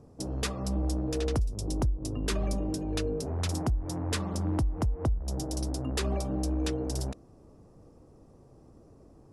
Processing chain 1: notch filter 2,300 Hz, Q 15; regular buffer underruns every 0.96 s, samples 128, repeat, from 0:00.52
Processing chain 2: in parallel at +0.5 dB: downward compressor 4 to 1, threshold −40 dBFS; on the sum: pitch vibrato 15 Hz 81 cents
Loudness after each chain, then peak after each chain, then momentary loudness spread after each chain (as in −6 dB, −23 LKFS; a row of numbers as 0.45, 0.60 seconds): −32.0, −29.5 LKFS; −20.0, −17.5 dBFS; 3, 3 LU